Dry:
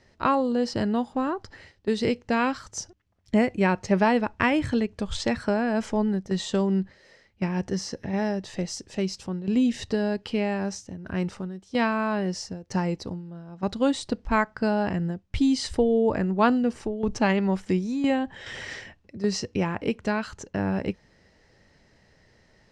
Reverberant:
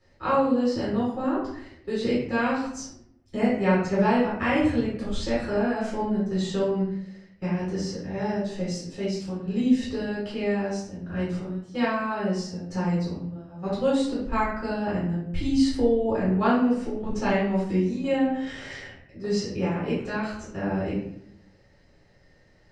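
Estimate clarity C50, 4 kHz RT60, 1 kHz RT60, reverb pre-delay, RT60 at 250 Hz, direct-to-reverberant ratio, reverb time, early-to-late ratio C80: 1.5 dB, 0.45 s, 0.65 s, 6 ms, 1.0 s, -9.0 dB, 0.75 s, 6.0 dB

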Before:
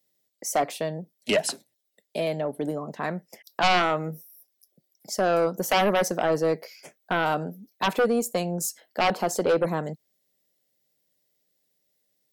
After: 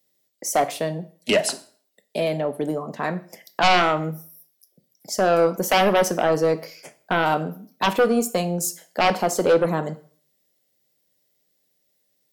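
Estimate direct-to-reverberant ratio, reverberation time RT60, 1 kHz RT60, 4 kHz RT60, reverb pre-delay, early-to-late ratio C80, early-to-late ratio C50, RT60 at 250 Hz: 11.5 dB, 0.45 s, 0.45 s, 0.45 s, 6 ms, 20.5 dB, 17.0 dB, 0.45 s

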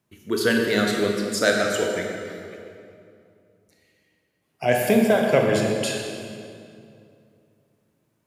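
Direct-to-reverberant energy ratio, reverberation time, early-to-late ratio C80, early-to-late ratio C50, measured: 1.0 dB, 2.5 s, 3.0 dB, 2.0 dB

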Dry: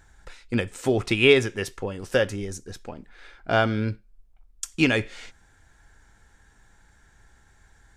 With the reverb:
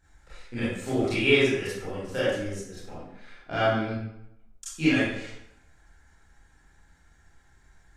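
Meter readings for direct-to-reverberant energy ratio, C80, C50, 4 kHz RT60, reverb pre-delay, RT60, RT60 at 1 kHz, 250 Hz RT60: -11.5 dB, 3.0 dB, -2.0 dB, 0.60 s, 25 ms, 0.80 s, 0.85 s, 0.75 s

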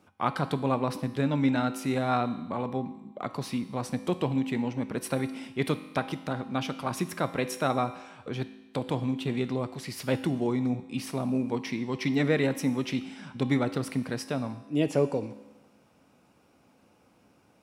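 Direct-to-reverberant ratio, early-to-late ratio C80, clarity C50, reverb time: 10.0 dB, 14.5 dB, 12.5 dB, 1.1 s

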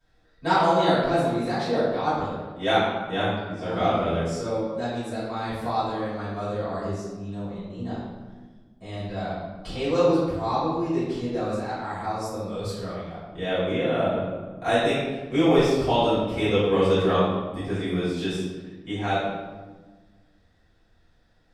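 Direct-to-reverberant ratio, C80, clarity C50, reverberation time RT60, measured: -15.0 dB, 2.0 dB, -1.0 dB, 1.3 s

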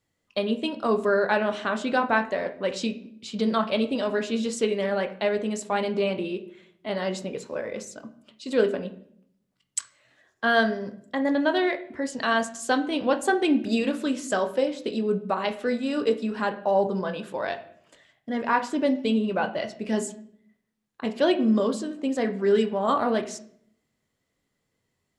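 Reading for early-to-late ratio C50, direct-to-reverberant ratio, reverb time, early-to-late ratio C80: 13.0 dB, 6.5 dB, 0.65 s, 17.0 dB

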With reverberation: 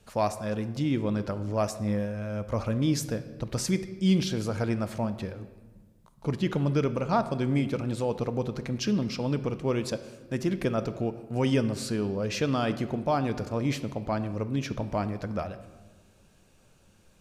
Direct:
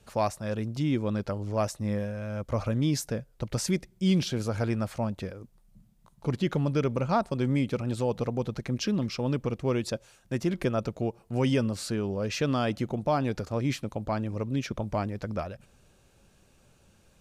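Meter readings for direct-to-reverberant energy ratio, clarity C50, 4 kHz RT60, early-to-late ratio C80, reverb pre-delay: 10.5 dB, 13.0 dB, 1.0 s, 14.5 dB, 3 ms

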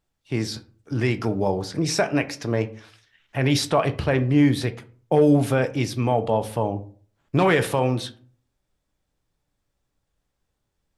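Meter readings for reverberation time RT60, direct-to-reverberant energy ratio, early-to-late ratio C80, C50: 0.45 s, 9.0 dB, 21.5 dB, 16.5 dB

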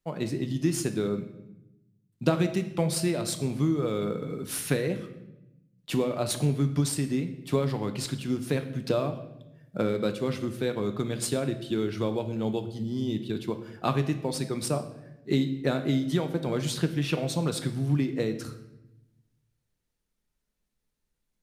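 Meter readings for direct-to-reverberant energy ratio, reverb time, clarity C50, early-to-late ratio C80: 7.5 dB, 0.90 s, 11.5 dB, 13.5 dB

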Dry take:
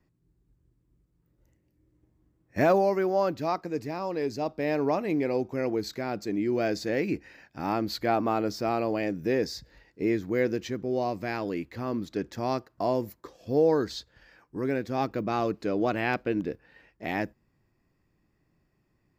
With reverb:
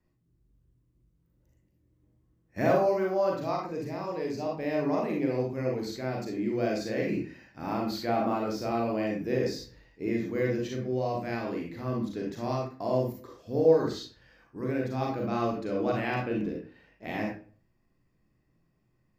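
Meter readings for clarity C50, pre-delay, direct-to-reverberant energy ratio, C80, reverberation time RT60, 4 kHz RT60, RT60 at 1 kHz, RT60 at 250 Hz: 2.0 dB, 37 ms, -1.5 dB, 8.0 dB, 0.40 s, 0.30 s, 0.40 s, 0.50 s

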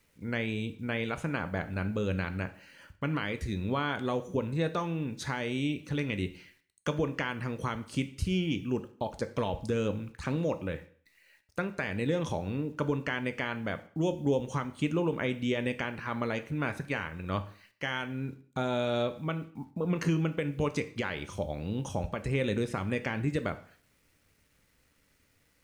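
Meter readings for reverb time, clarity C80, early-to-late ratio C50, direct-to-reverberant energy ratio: 0.50 s, 19.0 dB, 15.0 dB, 9.5 dB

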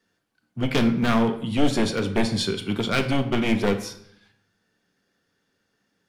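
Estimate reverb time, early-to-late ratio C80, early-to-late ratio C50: 0.70 s, 14.5 dB, 11.5 dB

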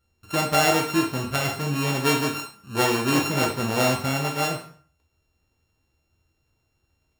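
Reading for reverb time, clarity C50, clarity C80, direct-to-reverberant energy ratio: 0.50 s, 7.0 dB, 12.0 dB, 0.5 dB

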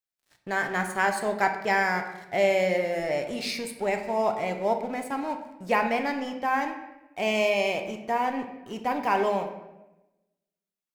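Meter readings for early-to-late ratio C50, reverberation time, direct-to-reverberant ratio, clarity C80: 8.5 dB, 1.0 s, 5.0 dB, 10.5 dB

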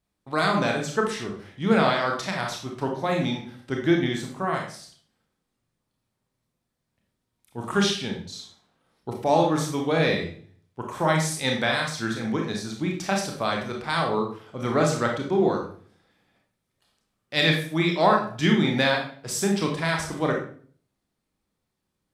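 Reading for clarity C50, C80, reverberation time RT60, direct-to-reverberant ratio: 5.0 dB, 9.5 dB, 0.50 s, 0.5 dB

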